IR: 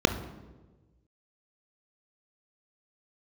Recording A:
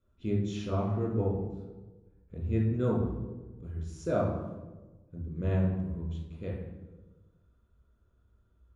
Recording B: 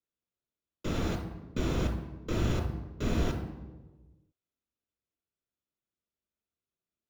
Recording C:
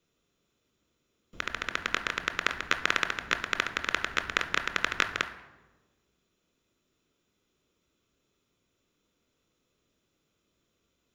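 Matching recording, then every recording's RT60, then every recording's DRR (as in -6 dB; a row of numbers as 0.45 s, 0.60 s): C; 1.2 s, 1.2 s, 1.2 s; -4.5 dB, 2.0 dB, 8.0 dB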